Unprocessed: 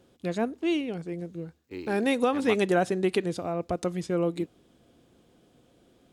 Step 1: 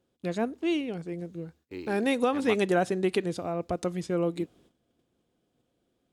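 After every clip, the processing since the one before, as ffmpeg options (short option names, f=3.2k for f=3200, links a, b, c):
-af "agate=range=-13dB:threshold=-57dB:ratio=16:detection=peak,volume=-1dB"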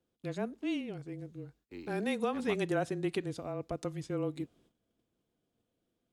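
-af "afreqshift=-22,volume=-7dB"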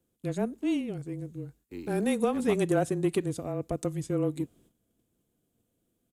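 -filter_complex "[0:a]asplit=2[a][b];[b]adynamicsmooth=sensitivity=1:basefreq=540,volume=-0.5dB[c];[a][c]amix=inputs=2:normalize=0,aexciter=amount=3.1:drive=6.2:freq=6.9k,aresample=32000,aresample=44100,volume=1.5dB"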